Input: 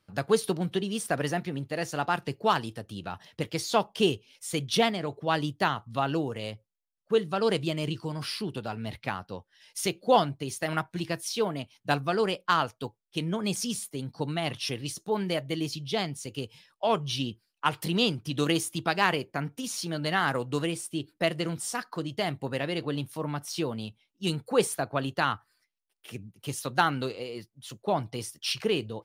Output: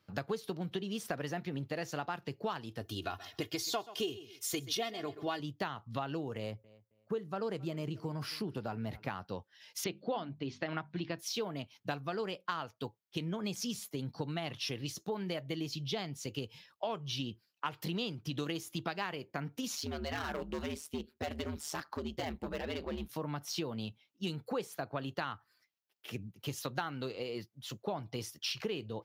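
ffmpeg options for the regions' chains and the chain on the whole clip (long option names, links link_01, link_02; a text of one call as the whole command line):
ffmpeg -i in.wav -filter_complex "[0:a]asettb=1/sr,asplit=3[link_01][link_02][link_03];[link_01]atrim=end=2.814[link_04];[link_02]atrim=start=2.81:end=5.4,asetpts=PTS-STARTPTS,afade=type=in:duration=0.004:curve=qsin,afade=type=out:start_time=2.586:duration=0.004:curve=qsin,highshelf=frequency=5500:gain=9,aecho=1:1:2.8:0.71,atrim=end_sample=114219,aecho=1:1:129|258:0.119|0.019,atrim=end_sample=114219[link_05];[link_03]atrim=start=5.396[link_06];[link_04][link_05]acrossfade=duration=0.004:curve1=hsin:curve2=qsin[link_07];[link_07][link_06]acrossfade=duration=0.004:curve1=qsin:curve2=hsin,asettb=1/sr,asplit=3[link_08][link_09][link_10];[link_08]atrim=end=6.374[link_11];[link_09]atrim=start=6.37:end=9.1,asetpts=PTS-STARTPTS,afade=type=in:duration=0.004:curve=qsin,afade=type=out:start_time=2.726:duration=0.004:curve=qsin,equalizer=frequency=3400:width_type=o:width=1.3:gain=-8.5,asplit=2[link_12][link_13];[link_13]adelay=269,lowpass=frequency=3100:poles=1,volume=-24dB,asplit=2[link_14][link_15];[link_15]adelay=269,lowpass=frequency=3100:poles=1,volume=0.24[link_16];[link_12][link_14][link_16]amix=inputs=3:normalize=0,atrim=end_sample=120393[link_17];[link_10]atrim=start=9.096[link_18];[link_11][link_17]acrossfade=duration=0.004:curve1=hsin:curve2=qsin[link_19];[link_19][link_18]acrossfade=duration=0.004:curve1=qsin:curve2=hsin,asettb=1/sr,asplit=3[link_20][link_21][link_22];[link_20]atrim=end=9.844[link_23];[link_21]atrim=start=9.84:end=11.19,asetpts=PTS-STARTPTS,afade=type=in:duration=0.004:curve=qsin,afade=type=out:start_time=1.346:duration=0.004:curve=qsin,lowpass=frequency=4400:width=0.5412,lowpass=frequency=4400:width=1.3066,equalizer=frequency=280:width_type=o:width=0.33:gain=5.5,bandreject=frequency=50:width_type=h:width=6,bandreject=frequency=100:width_type=h:width=6,bandreject=frequency=150:width_type=h:width=6,bandreject=frequency=200:width_type=h:width=6,bandreject=frequency=250:width_type=h:width=6[link_24];[link_22]atrim=start=11.186[link_25];[link_23][link_24]acrossfade=duration=0.004:curve1=hsin:curve2=qsin[link_26];[link_26][link_25]acrossfade=duration=0.004:curve1=qsin:curve2=hsin,asettb=1/sr,asplit=3[link_27][link_28][link_29];[link_27]atrim=end=19.754[link_30];[link_28]atrim=start=19.75:end=23.09,asetpts=PTS-STARTPTS,afade=type=in:duration=0.004:curve=qsin,afade=type=out:start_time=3.336:duration=0.004:curve=qsin,asoftclip=type=hard:threshold=-27.5dB,aeval=exprs='val(0)*sin(2*PI*76*n/s)':channel_layout=same[link_31];[link_29]atrim=start=23.086[link_32];[link_30][link_31]acrossfade=duration=0.004:curve1=hsin:curve2=qsin[link_33];[link_33][link_32]acrossfade=duration=0.004:curve1=qsin:curve2=hsin,highpass=54,equalizer=frequency=9100:width=3.4:gain=-14,acompressor=threshold=-34dB:ratio=6" out.wav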